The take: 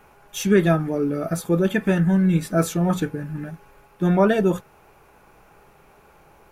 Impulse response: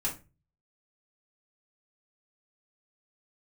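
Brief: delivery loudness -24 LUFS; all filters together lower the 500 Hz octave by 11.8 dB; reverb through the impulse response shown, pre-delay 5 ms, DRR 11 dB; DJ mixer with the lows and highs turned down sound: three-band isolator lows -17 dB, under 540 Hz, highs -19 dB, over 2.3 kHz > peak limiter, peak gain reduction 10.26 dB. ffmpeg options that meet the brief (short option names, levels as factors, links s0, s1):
-filter_complex "[0:a]equalizer=f=500:t=o:g=-7.5,asplit=2[s0][s1];[1:a]atrim=start_sample=2205,adelay=5[s2];[s1][s2]afir=irnorm=-1:irlink=0,volume=0.168[s3];[s0][s3]amix=inputs=2:normalize=0,acrossover=split=540 2300:gain=0.141 1 0.112[s4][s5][s6];[s4][s5][s6]amix=inputs=3:normalize=0,volume=3.98,alimiter=limit=0.251:level=0:latency=1"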